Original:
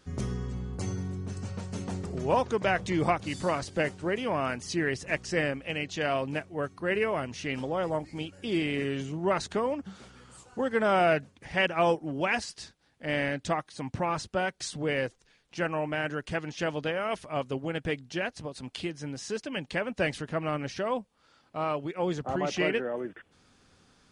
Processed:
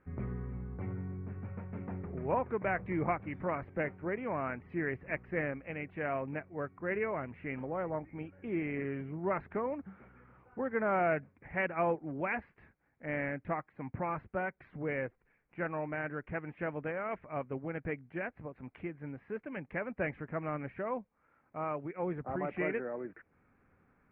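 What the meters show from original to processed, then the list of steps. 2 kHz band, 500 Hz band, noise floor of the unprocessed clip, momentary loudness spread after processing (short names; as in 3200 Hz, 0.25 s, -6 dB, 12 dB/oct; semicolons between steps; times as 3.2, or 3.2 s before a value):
-6.5 dB, -6.5 dB, -66 dBFS, 9 LU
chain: Chebyshev low-pass 2300 Hz, order 5; gain -5.5 dB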